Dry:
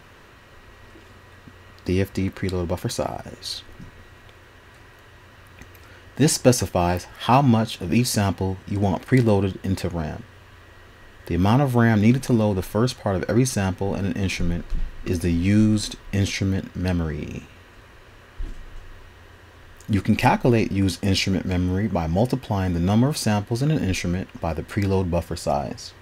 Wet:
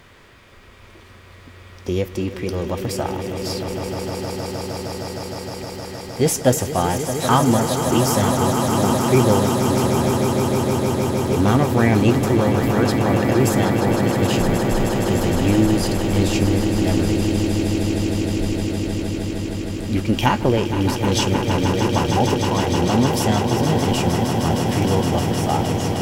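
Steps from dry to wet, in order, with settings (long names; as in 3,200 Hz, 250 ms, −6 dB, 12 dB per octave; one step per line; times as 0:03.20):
formants moved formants +3 semitones
echo that builds up and dies away 155 ms, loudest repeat 8, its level −9.5 dB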